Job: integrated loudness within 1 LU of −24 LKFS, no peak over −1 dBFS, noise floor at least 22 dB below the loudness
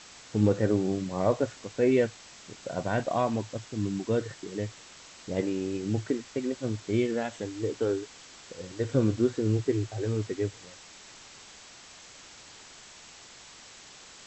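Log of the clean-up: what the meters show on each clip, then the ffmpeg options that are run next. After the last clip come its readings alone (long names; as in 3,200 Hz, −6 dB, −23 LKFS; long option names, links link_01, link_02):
background noise floor −50 dBFS; target noise floor −52 dBFS; integrated loudness −29.5 LKFS; sample peak −11.0 dBFS; target loudness −24.0 LKFS
→ -af "afftdn=noise_reduction=6:noise_floor=-50"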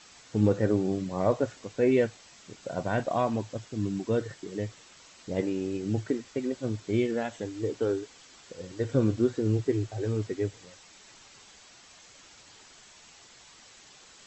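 background noise floor −54 dBFS; integrated loudness −29.5 LKFS; sample peak −11.0 dBFS; target loudness −24.0 LKFS
→ -af "volume=5.5dB"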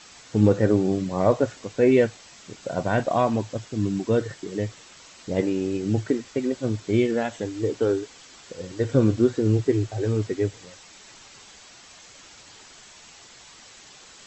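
integrated loudness −24.0 LKFS; sample peak −5.5 dBFS; background noise floor −49 dBFS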